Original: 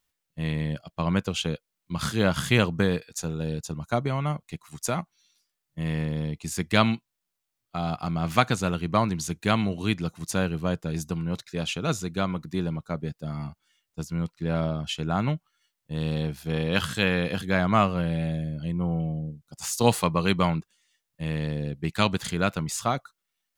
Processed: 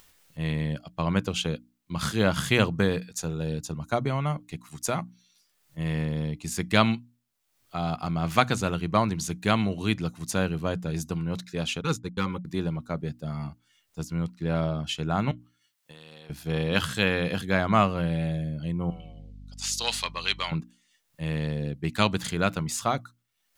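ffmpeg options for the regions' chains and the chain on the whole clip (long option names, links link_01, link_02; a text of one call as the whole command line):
ffmpeg -i in.wav -filter_complex "[0:a]asettb=1/sr,asplit=3[link_01][link_02][link_03];[link_01]atrim=end=11.814[link_04];[link_02]atrim=start=11.81:end=12.45,asetpts=PTS-STARTPTS,afade=type=in:duration=0.004:curve=qsin,afade=type=out:start_time=0.636:duration=0.004:curve=qsin,agate=range=-56dB:threshold=-31dB:ratio=16:release=100:detection=peak,asoftclip=type=hard:threshold=-15.5dB,asuperstop=centerf=660:order=20:qfactor=3[link_05];[link_03]atrim=start=12.446[link_06];[link_04][link_05]acrossfade=duration=0.004:curve1=hsin:curve2=qsin[link_07];[link_07][link_06]acrossfade=duration=0.004:curve1=qsin:curve2=hsin,asettb=1/sr,asplit=3[link_08][link_09][link_10];[link_08]atrim=end=15.314[link_11];[link_09]atrim=start=15.31:end=16.3,asetpts=PTS-STARTPTS,afade=type=in:duration=0.004:curve=qsin,afade=type=out:start_time=0.986:duration=0.004:curve=qsin,highpass=frequency=1100:poles=1,acompressor=threshold=-50dB:ratio=2.5:attack=3.2:release=140:knee=1:detection=peak[link_12];[link_10]atrim=start=16.296[link_13];[link_11][link_12]acrossfade=duration=0.004:curve1=hsin:curve2=qsin[link_14];[link_14][link_13]acrossfade=duration=0.004:curve1=qsin:curve2=hsin,asettb=1/sr,asplit=3[link_15][link_16][link_17];[link_15]atrim=end=18.904[link_18];[link_16]atrim=start=18.9:end=20.52,asetpts=PTS-STARTPTS,afade=type=in:duration=0.004:curve=qsin,afade=type=out:start_time=1.616:duration=0.004:curve=qsin,acontrast=76,bandpass=frequency=3900:width_type=q:width=1.3,aeval=exprs='val(0)+0.00708*(sin(2*PI*50*n/s)+sin(2*PI*2*50*n/s)/2+sin(2*PI*3*50*n/s)/3+sin(2*PI*4*50*n/s)/4+sin(2*PI*5*50*n/s)/5)':channel_layout=same[link_19];[link_17]atrim=start=20.516[link_20];[link_18][link_19]acrossfade=duration=0.004:curve1=hsin:curve2=qsin[link_21];[link_21][link_20]acrossfade=duration=0.004:curve1=qsin:curve2=hsin,bandreject=frequency=60:width_type=h:width=6,bandreject=frequency=120:width_type=h:width=6,bandreject=frequency=180:width_type=h:width=6,bandreject=frequency=240:width_type=h:width=6,bandreject=frequency=300:width_type=h:width=6,acompressor=mode=upward:threshold=-42dB:ratio=2.5" out.wav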